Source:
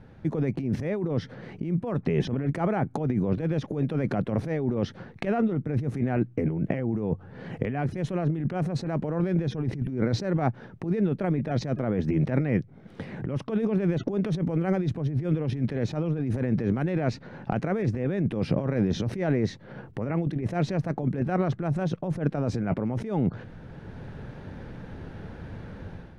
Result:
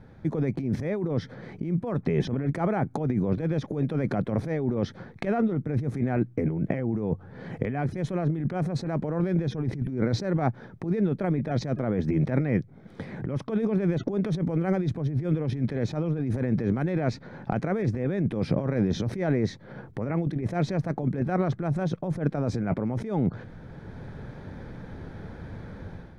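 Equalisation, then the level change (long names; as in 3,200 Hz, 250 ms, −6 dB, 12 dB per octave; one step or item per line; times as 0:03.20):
notch filter 2,800 Hz, Q 6.5
0.0 dB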